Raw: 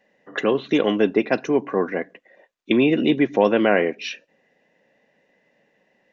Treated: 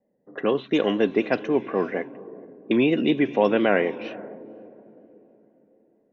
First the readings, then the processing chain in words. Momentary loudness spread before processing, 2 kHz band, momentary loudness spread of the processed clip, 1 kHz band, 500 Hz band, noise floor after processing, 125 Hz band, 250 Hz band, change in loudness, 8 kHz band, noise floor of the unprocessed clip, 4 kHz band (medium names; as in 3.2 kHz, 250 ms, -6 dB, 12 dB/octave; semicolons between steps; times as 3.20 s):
14 LU, -3.0 dB, 20 LU, -2.5 dB, -2.5 dB, -66 dBFS, -2.5 dB, -2.5 dB, -2.5 dB, no reading, -66 dBFS, -3.5 dB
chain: echo that smears into a reverb 493 ms, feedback 42%, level -16 dB; level-controlled noise filter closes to 450 Hz, open at -14 dBFS; vibrato 4.2 Hz 48 cents; trim -2.5 dB